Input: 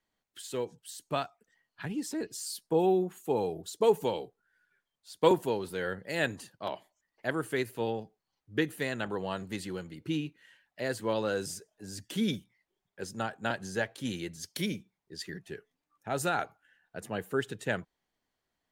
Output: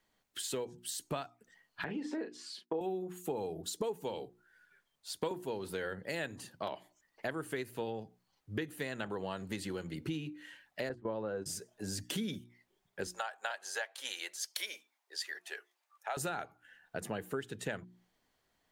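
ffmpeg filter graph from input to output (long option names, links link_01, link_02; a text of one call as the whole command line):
ffmpeg -i in.wav -filter_complex "[0:a]asettb=1/sr,asplit=3[link_01][link_02][link_03];[link_01]atrim=end=1.844[link_04];[link_02]atrim=start=1.84:end=2.81,asetpts=PTS-STARTPTS,afade=type=in:duration=0.004:curve=qsin,afade=type=out:start_time=0.966:duration=0.004:curve=qsin,agate=range=-33dB:threshold=-48dB:ratio=3:release=100:detection=peak,highpass=290,lowpass=2400,asplit=2[link_05][link_06];[link_06]adelay=37,volume=-7dB[link_07];[link_05][link_07]amix=inputs=2:normalize=0,atrim=end_sample=42777[link_08];[link_03]atrim=start=2.806[link_09];[link_04][link_08]acrossfade=duration=0.004:curve1=hsin:curve2=qsin[link_10];[link_10][link_09]acrossfade=duration=0.004:curve1=qsin:curve2=hsin,asettb=1/sr,asplit=3[link_11][link_12][link_13];[link_11]atrim=end=10.894[link_14];[link_12]atrim=start=10.89:end=11.46,asetpts=PTS-STARTPTS,afade=type=in:duration=0.004:curve=qsin,afade=type=out:start_time=0.566:duration=0.004:curve=qsin,agate=range=-15dB:threshold=-37dB:ratio=16:release=100:detection=peak,lowpass=1100,aemphasis=mode=production:type=75kf[link_15];[link_13]atrim=start=11.456[link_16];[link_14][link_15]acrossfade=duration=0.004:curve1=hsin:curve2=qsin[link_17];[link_17][link_16]acrossfade=duration=0.004:curve1=qsin:curve2=hsin,asettb=1/sr,asplit=3[link_18][link_19][link_20];[link_18]atrim=end=13.074[link_21];[link_19]atrim=start=13.07:end=16.17,asetpts=PTS-STARTPTS,afade=type=in:duration=0.004:curve=qsin,afade=type=out:start_time=3.096:duration=0.004:curve=qsin,highpass=frequency=640:width=0.5412,highpass=frequency=640:width=1.3066,aeval=exprs='val(0)+0.000794*(sin(2*PI*60*n/s)+sin(2*PI*2*60*n/s)/2+sin(2*PI*3*60*n/s)/3+sin(2*PI*4*60*n/s)/4+sin(2*PI*5*60*n/s)/5)':channel_layout=same[link_22];[link_20]atrim=start=16.166[link_23];[link_21][link_22]acrossfade=duration=0.004:curve1=hsin:curve2=qsin[link_24];[link_24][link_23]acrossfade=duration=0.004:curve1=qsin:curve2=hsin,bandreject=frequency=60:width_type=h:width=6,bandreject=frequency=120:width_type=h:width=6,bandreject=frequency=180:width_type=h:width=6,bandreject=frequency=240:width_type=h:width=6,bandreject=frequency=300:width_type=h:width=6,bandreject=frequency=360:width_type=h:width=6,acompressor=threshold=-42dB:ratio=6,volume=6.5dB" out.wav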